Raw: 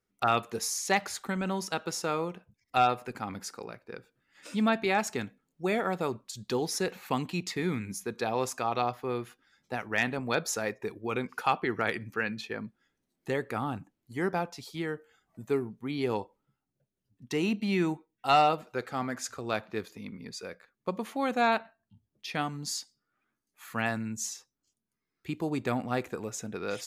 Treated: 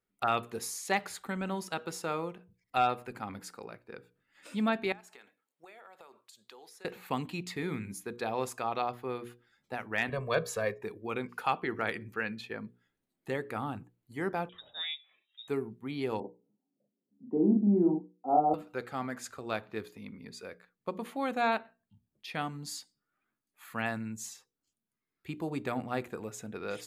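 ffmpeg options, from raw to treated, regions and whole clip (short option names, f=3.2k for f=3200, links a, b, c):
-filter_complex "[0:a]asettb=1/sr,asplit=3[a][b][c];[a]atrim=end=4.924[d];[b]atrim=start=4.92:end=6.85,asetpts=PTS-STARTPTS,afade=t=in:d=0.004:c=qsin,afade=t=out:st=1.926:d=0.004:c=qsin,highpass=630,acompressor=threshold=-45dB:ratio=16:attack=3.2:release=140:knee=1:detection=peak[e];[c]atrim=start=6.846[f];[d][e]acrossfade=d=0.004:c1=hsin:c2=qsin[g];[g][f]acrossfade=d=0.004:c1=qsin:c2=hsin,asettb=1/sr,asplit=3[h][i][j];[h]atrim=end=10.094[k];[i]atrim=start=10.09:end=10.81,asetpts=PTS-STARTPTS,afade=t=in:d=0.004:c=qsin,afade=t=out:st=0.716:d=0.004:c=qsin,bass=f=250:g=3,treble=f=4k:g=-5,aecho=1:1:1.8:0.98,atrim=end_sample=31752[l];[j]atrim=start=10.806[m];[k][l]acrossfade=d=0.004:c1=hsin:c2=qsin[n];[n][m]acrossfade=d=0.004:c1=qsin:c2=hsin,asettb=1/sr,asplit=3[o][p][q];[o]atrim=end=14.494[r];[p]atrim=start=14.49:end=15.48,asetpts=PTS-STARTPTS,afade=t=in:d=0.004:c=qsin,afade=t=out:st=0.986:d=0.004:c=qsin,bandreject=f=60:t=h:w=6,bandreject=f=120:t=h:w=6,bandreject=f=180:t=h:w=6,lowpass=f=3.3k:t=q:w=0.5098,lowpass=f=3.3k:t=q:w=0.6013,lowpass=f=3.3k:t=q:w=0.9,lowpass=f=3.3k:t=q:w=2.563,afreqshift=-3900[s];[q]atrim=start=15.476[t];[r][s]acrossfade=d=0.004:c1=hsin:c2=qsin[u];[u][t]acrossfade=d=0.004:c1=qsin:c2=hsin,asettb=1/sr,asplit=3[v][w][x];[v]atrim=end=16.204[y];[w]atrim=start=16.2:end=18.54,asetpts=PTS-STARTPTS,afade=t=in:d=0.004:c=qsin,afade=t=out:st=2.336:d=0.004:c=qsin,asuperpass=centerf=390:order=8:qfactor=0.63,equalizer=f=240:w=0.98:g=8.5,asplit=2[z][aa];[aa]adelay=39,volume=-2dB[ab];[z][ab]amix=inputs=2:normalize=0,atrim=end_sample=103194[ac];[x]atrim=start=18.536[ad];[y][ac]acrossfade=d=0.004:c1=hsin:c2=qsin[ae];[ae][ad]acrossfade=d=0.004:c1=qsin:c2=hsin,equalizer=f=5.8k:t=o:w=0.51:g=-7.5,bandreject=f=60:t=h:w=6,bandreject=f=120:t=h:w=6,bandreject=f=180:t=h:w=6,bandreject=f=240:t=h:w=6,bandreject=f=300:t=h:w=6,bandreject=f=360:t=h:w=6,bandreject=f=420:t=h:w=6,bandreject=f=480:t=h:w=6,volume=-3dB"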